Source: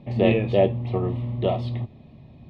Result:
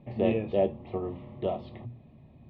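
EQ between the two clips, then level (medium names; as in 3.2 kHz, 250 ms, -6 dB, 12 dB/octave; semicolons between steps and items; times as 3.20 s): low-pass 2.8 kHz 12 dB/octave; hum notches 60/120/180/240 Hz; dynamic bell 1.9 kHz, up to -5 dB, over -42 dBFS, Q 1.3; -6.0 dB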